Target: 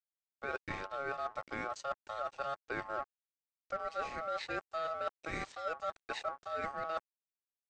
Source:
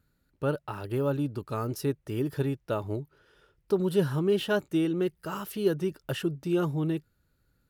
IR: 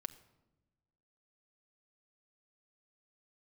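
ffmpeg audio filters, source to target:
-filter_complex "[0:a]acrossover=split=95|290[a][b][c];[a]acompressor=threshold=-48dB:ratio=4[d];[b]acompressor=threshold=-45dB:ratio=4[e];[c]acompressor=threshold=-27dB:ratio=4[f];[d][e][f]amix=inputs=3:normalize=0,aeval=exprs='sgn(val(0))*max(abs(val(0))-0.00398,0)':c=same,aresample=16000,aresample=44100,areverse,acompressor=threshold=-45dB:ratio=8,areverse,aeval=exprs='val(0)*sin(2*PI*970*n/s)':c=same,volume=12dB"

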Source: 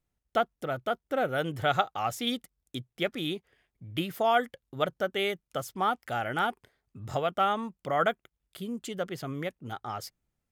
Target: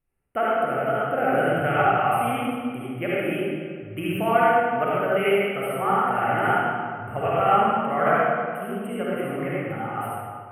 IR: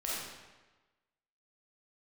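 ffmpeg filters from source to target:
-filter_complex "[0:a]asuperstop=centerf=5100:order=20:qfactor=0.92[a];[1:a]atrim=start_sample=2205,asetrate=26901,aresample=44100[b];[a][b]afir=irnorm=-1:irlink=0"

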